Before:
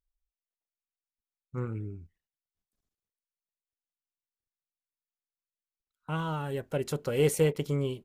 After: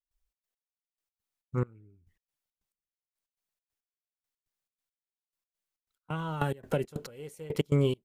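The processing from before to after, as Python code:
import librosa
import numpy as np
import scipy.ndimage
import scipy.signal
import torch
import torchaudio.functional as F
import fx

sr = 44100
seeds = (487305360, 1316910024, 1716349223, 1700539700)

y = fx.step_gate(x, sr, bpm=138, pattern='.xx.x....x', floor_db=-24.0, edge_ms=4.5)
y = fx.band_squash(y, sr, depth_pct=100, at=(6.1, 6.84))
y = F.gain(torch.from_numpy(y), 5.0).numpy()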